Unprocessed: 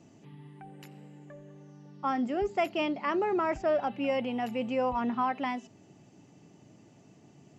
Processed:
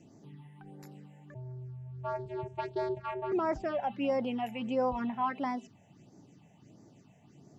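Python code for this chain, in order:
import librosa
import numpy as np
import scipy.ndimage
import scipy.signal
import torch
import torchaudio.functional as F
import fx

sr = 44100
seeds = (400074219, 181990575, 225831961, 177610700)

y = fx.vocoder(x, sr, bands=8, carrier='square', carrier_hz=127.0, at=(1.34, 3.32))
y = fx.phaser_stages(y, sr, stages=6, low_hz=320.0, high_hz=3000.0, hz=1.5, feedback_pct=0)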